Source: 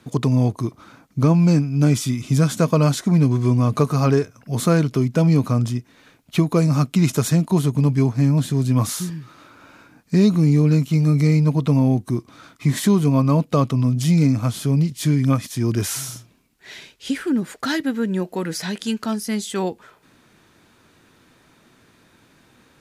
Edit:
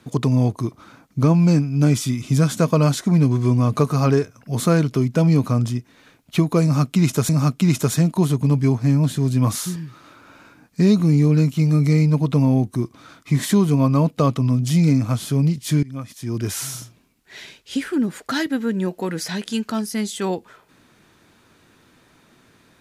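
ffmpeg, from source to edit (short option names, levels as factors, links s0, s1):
-filter_complex "[0:a]asplit=3[s0][s1][s2];[s0]atrim=end=7.292[s3];[s1]atrim=start=6.628:end=15.17,asetpts=PTS-STARTPTS,afade=t=out:st=8.538:d=0.004:c=hsin:silence=0.0794328[s4];[s2]atrim=start=15.17,asetpts=PTS-STARTPTS,afade=t=in:d=0.91:silence=0.0794328[s5];[s4][s5]concat=n=2:v=0:a=1[s6];[s3][s6]acrossfade=d=0.004:c1=hsin:c2=hsin"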